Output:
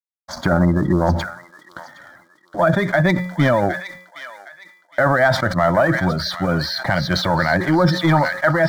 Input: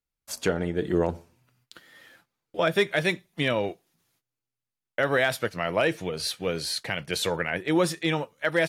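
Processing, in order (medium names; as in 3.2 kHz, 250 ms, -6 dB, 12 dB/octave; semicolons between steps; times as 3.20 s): Gaussian low-pass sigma 2.1 samples; spectral gate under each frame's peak -25 dB strong; peaking EQ 550 Hz +7 dB 0.77 oct; in parallel at +1 dB: compressor with a negative ratio -23 dBFS, ratio -0.5; on the sum: waveshaping leveller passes 1; expander -44 dBFS; bit crusher 12-bit; static phaser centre 1.1 kHz, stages 4; feedback comb 180 Hz, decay 0.7 s, harmonics odd, mix 40%; on a send: feedback echo behind a high-pass 764 ms, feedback 33%, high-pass 1.5 kHz, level -9.5 dB; on the sum: loudness maximiser +14.5 dB; decay stretcher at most 87 dB/s; trim -4.5 dB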